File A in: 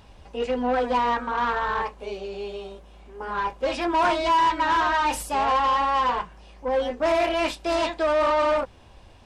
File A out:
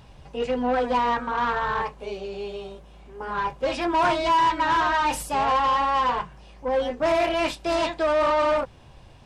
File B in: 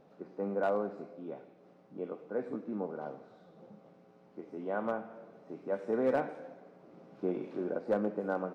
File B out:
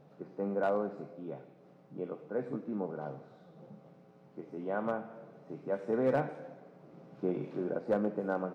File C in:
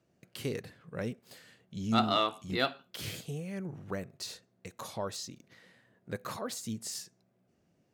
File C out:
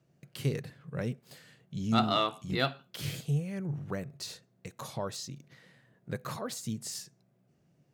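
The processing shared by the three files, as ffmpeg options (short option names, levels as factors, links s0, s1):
-af "equalizer=f=140:t=o:w=0.36:g=12.5"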